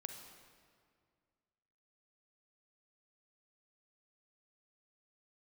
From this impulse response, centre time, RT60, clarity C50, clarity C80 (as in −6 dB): 42 ms, 2.1 s, 5.5 dB, 7.0 dB